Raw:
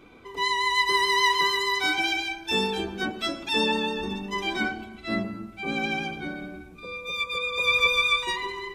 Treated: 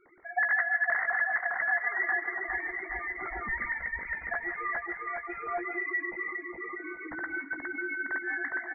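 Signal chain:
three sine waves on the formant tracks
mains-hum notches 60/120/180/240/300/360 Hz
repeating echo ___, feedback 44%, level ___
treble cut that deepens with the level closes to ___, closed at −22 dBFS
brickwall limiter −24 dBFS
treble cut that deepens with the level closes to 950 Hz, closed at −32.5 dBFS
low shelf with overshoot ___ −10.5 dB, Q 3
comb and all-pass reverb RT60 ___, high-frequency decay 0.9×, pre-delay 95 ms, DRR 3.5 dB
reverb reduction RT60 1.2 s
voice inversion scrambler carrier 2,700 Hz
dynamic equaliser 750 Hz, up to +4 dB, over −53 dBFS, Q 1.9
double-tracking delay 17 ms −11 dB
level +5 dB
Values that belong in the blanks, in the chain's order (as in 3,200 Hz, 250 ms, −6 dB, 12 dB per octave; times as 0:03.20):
411 ms, −3.5 dB, 1,300 Hz, 520 Hz, 1 s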